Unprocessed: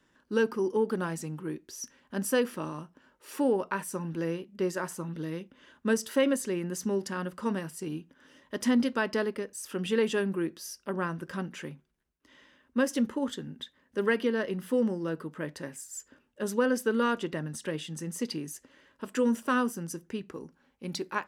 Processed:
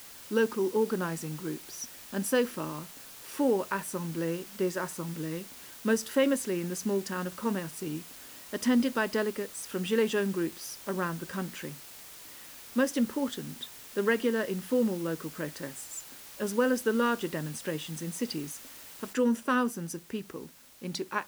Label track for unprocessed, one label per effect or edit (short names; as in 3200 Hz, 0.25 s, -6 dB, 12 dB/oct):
19.130000	19.130000	noise floor step -48 dB -56 dB